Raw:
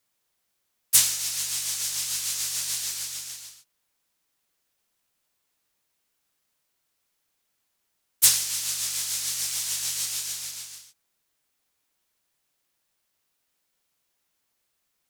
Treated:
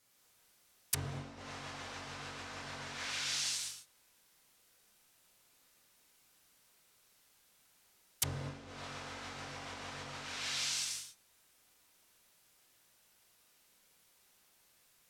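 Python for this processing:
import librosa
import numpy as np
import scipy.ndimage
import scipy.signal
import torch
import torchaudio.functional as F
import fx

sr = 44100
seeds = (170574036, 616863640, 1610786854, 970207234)

y = fx.rev_gated(x, sr, seeds[0], gate_ms=240, shape='flat', drr_db=-4.0)
y = fx.env_lowpass_down(y, sr, base_hz=480.0, full_db=-18.5)
y = y * 10.0 ** (3.0 / 20.0)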